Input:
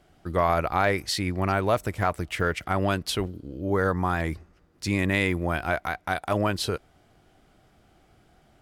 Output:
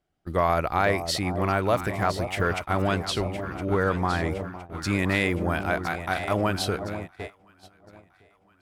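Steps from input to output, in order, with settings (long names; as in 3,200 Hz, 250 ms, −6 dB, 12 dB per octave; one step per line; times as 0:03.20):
0:02.86–0:04.31: low-pass filter 8,000 Hz 12 dB per octave
delay that swaps between a low-pass and a high-pass 507 ms, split 900 Hz, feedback 77%, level −8.5 dB
noise gate −33 dBFS, range −19 dB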